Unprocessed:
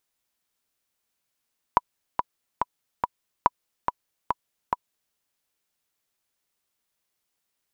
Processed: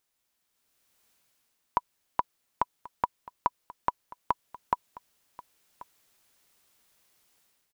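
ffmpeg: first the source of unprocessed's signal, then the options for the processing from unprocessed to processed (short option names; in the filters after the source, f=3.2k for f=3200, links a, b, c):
-f lavfi -i "aevalsrc='pow(10,(-3.5-6*gte(mod(t,4*60/142),60/142))/20)*sin(2*PI*982*mod(t,60/142))*exp(-6.91*mod(t,60/142)/0.03)':d=3.38:s=44100"
-af "dynaudnorm=f=530:g=3:m=12dB,alimiter=limit=-10.5dB:level=0:latency=1:release=35,aecho=1:1:1085:0.106"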